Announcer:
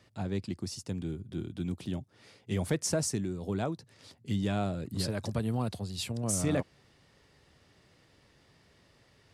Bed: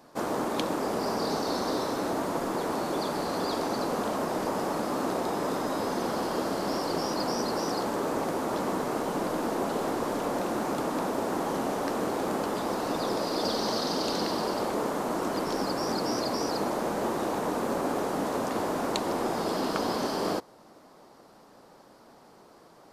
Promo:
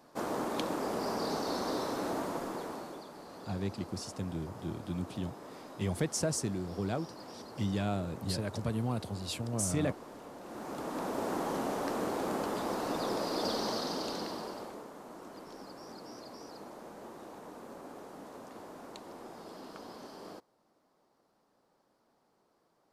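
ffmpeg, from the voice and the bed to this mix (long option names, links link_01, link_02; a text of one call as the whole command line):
ffmpeg -i stem1.wav -i stem2.wav -filter_complex "[0:a]adelay=3300,volume=-2dB[link_01];[1:a]volume=9dB,afade=type=out:start_time=2.16:duration=0.89:silence=0.211349,afade=type=in:start_time=10.41:duration=0.86:silence=0.199526,afade=type=out:start_time=13.54:duration=1.32:silence=0.199526[link_02];[link_01][link_02]amix=inputs=2:normalize=0" out.wav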